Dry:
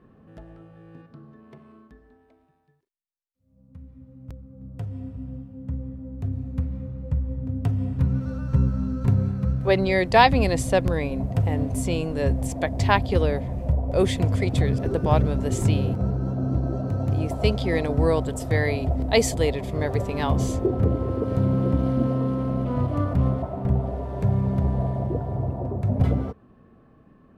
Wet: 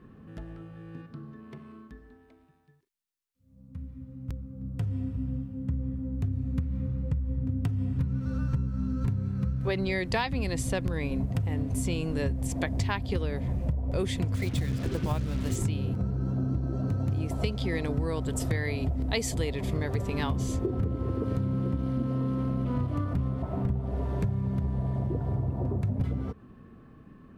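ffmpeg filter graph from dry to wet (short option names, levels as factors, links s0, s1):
-filter_complex "[0:a]asettb=1/sr,asplit=3[s0][s1][s2];[s0]atrim=end=14.344[s3];[s1]atrim=start=14.34:end=15.56,asetpts=PTS-STARTPTS,afade=t=in:d=0.004:c=qsin,afade=t=out:st=1.216:d=0.004:c=qsin,bandreject=f=420:w=10,acrusher=bits=5:mix=0:aa=0.5[s4];[s2]atrim=start=15.556[s5];[s3][s4]acrossfade=d=0.004:c1=hsin:c2=qsin[s6];[s6][s5]acrossfade=d=0.004:c1=qsin:c2=hsin,equalizer=f=650:t=o:w=1.1:g=-8,acompressor=threshold=0.0355:ratio=10,volume=1.58"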